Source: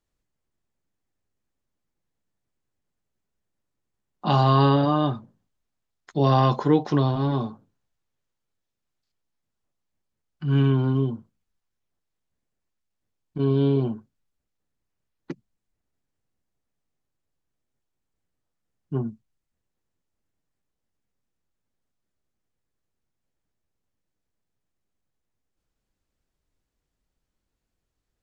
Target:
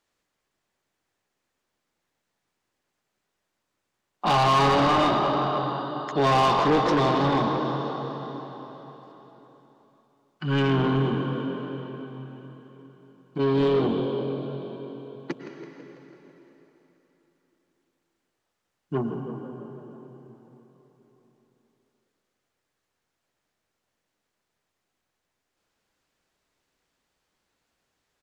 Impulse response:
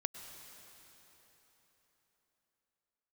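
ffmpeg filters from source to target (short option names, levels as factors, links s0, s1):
-filter_complex "[0:a]asplit=7[s0][s1][s2][s3][s4][s5][s6];[s1]adelay=165,afreqshift=44,volume=0.211[s7];[s2]adelay=330,afreqshift=88,volume=0.119[s8];[s3]adelay=495,afreqshift=132,volume=0.0661[s9];[s4]adelay=660,afreqshift=176,volume=0.0372[s10];[s5]adelay=825,afreqshift=220,volume=0.0209[s11];[s6]adelay=990,afreqshift=264,volume=0.0116[s12];[s0][s7][s8][s9][s10][s11][s12]amix=inputs=7:normalize=0[s13];[1:a]atrim=start_sample=2205[s14];[s13][s14]afir=irnorm=-1:irlink=0,asplit=2[s15][s16];[s16]highpass=f=720:p=1,volume=15.8,asoftclip=type=tanh:threshold=0.473[s17];[s15][s17]amix=inputs=2:normalize=0,lowpass=f=4700:p=1,volume=0.501,volume=0.501"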